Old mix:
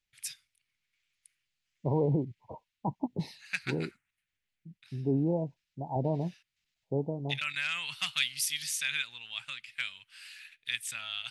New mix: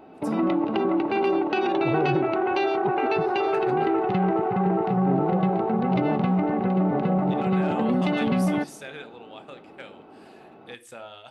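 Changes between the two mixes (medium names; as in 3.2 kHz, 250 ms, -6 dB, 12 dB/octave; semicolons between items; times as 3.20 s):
first voice: remove FFT filter 140 Hz 0 dB, 490 Hz -24 dB, 2.2 kHz +14 dB; background: unmuted; reverb: on, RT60 0.40 s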